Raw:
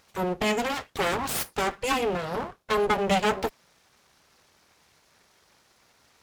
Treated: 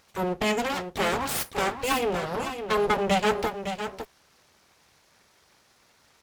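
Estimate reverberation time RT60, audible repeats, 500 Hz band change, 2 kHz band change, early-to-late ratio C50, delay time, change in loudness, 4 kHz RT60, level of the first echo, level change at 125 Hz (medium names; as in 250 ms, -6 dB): no reverb, 1, +0.5 dB, +0.5 dB, no reverb, 559 ms, 0.0 dB, no reverb, -8.5 dB, +0.5 dB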